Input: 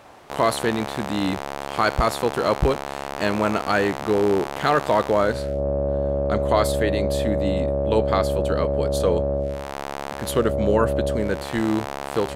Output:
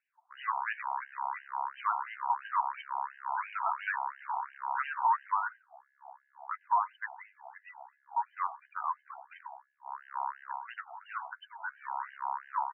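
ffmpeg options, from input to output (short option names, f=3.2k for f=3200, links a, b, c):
-filter_complex "[0:a]afftdn=nr=28:nf=-35,equalizer=f=990:t=o:w=0.33:g=14,alimiter=limit=-8.5dB:level=0:latency=1:release=61,asetrate=42777,aresample=44100,crystalizer=i=4:c=0,asoftclip=type=tanh:threshold=-8dB,asplit=2[a][b];[b]adelay=99.13,volume=-22dB,highshelf=f=4k:g=-2.23[c];[a][c]amix=inputs=2:normalize=0,afftfilt=real='re*between(b*sr/1024,960*pow(2200/960,0.5+0.5*sin(2*PI*2.9*pts/sr))/1.41,960*pow(2200/960,0.5+0.5*sin(2*PI*2.9*pts/sr))*1.41)':imag='im*between(b*sr/1024,960*pow(2200/960,0.5+0.5*sin(2*PI*2.9*pts/sr))/1.41,960*pow(2200/960,0.5+0.5*sin(2*PI*2.9*pts/sr))*1.41)':win_size=1024:overlap=0.75,volume=-7dB"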